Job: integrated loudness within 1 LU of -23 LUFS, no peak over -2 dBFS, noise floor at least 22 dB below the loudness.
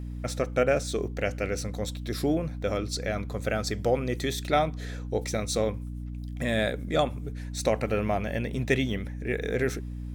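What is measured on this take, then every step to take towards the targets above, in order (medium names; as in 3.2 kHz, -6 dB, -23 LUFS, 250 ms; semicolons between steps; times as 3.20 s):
hum 60 Hz; highest harmonic 300 Hz; hum level -33 dBFS; loudness -29.0 LUFS; peak level -8.5 dBFS; loudness target -23.0 LUFS
-> de-hum 60 Hz, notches 5; trim +6 dB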